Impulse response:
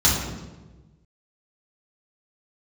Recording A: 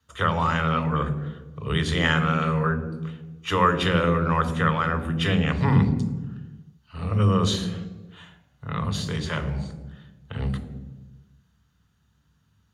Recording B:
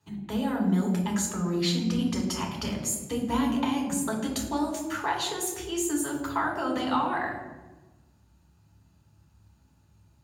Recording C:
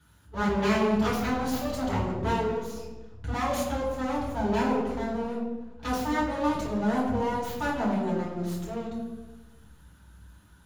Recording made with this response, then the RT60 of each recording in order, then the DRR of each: C; 1.2, 1.2, 1.2 seconds; 9.0, −0.5, −7.0 decibels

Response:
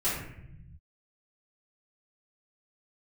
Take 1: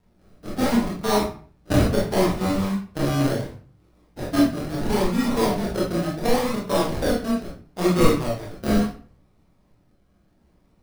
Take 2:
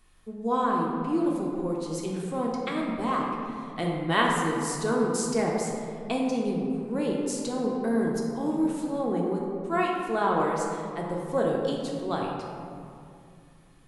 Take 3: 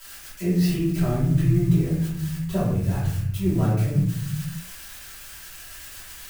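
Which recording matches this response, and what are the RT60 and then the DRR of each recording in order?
3; 0.45, 2.5, 0.75 seconds; −5.5, −2.0, −13.0 decibels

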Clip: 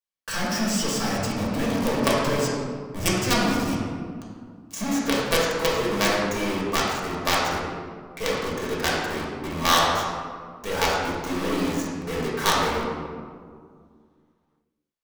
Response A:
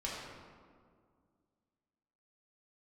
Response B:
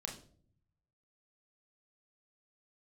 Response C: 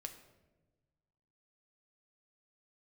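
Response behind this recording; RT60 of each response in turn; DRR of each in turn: A; 2.0, 0.55, 1.2 seconds; −6.0, 0.5, 5.5 decibels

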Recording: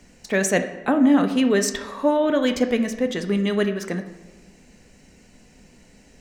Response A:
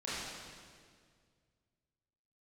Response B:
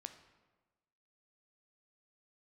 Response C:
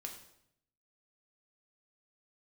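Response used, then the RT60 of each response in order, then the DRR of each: B; 2.0, 1.3, 0.75 seconds; −10.5, 7.5, 1.5 decibels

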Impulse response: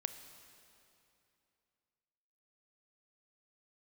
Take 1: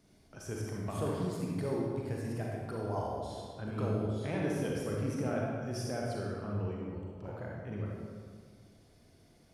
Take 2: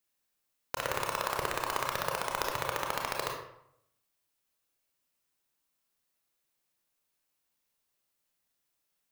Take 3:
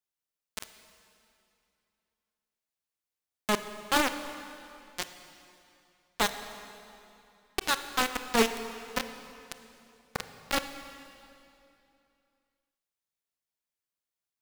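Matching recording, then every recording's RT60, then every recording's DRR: 3; 1.8, 0.75, 2.8 seconds; −3.0, 0.0, 9.0 decibels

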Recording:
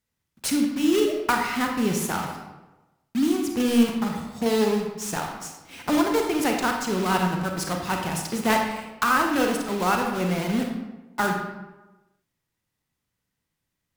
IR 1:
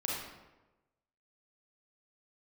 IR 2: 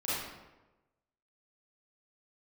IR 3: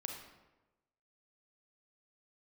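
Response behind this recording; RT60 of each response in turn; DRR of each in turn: 3; 1.1, 1.1, 1.1 seconds; −4.5, −11.5, 2.0 decibels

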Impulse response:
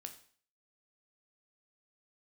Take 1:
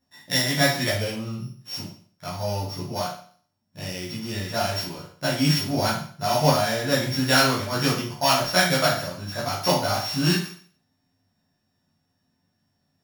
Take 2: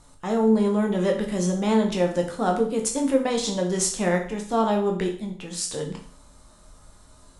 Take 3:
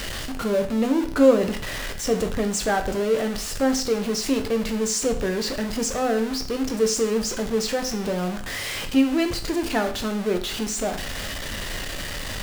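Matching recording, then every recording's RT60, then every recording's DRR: 3; 0.50, 0.50, 0.50 seconds; −8.0, 1.5, 5.5 decibels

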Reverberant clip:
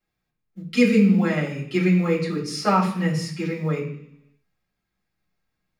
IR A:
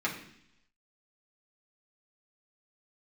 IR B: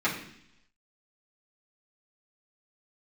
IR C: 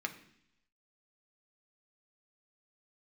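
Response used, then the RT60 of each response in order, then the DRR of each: B; 0.70, 0.70, 0.70 seconds; −5.0, −9.0, 4.0 decibels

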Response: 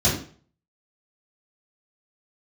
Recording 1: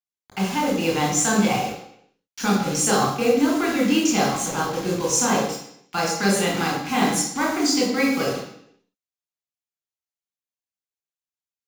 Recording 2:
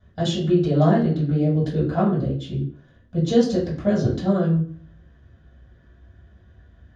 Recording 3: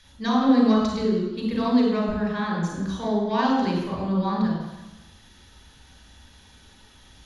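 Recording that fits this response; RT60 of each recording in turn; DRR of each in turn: 2; 0.70, 0.45, 1.1 seconds; −3.0, −9.0, −2.0 decibels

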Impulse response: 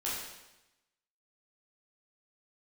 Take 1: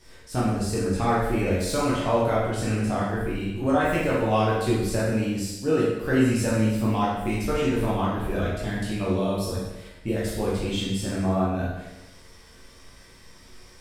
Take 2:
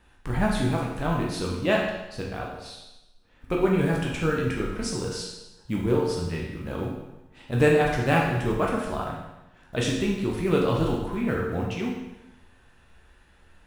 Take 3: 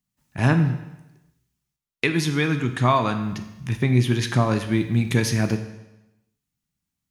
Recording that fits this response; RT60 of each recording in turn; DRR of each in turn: 1; 0.95, 0.95, 0.95 seconds; −8.0, −2.5, 7.0 decibels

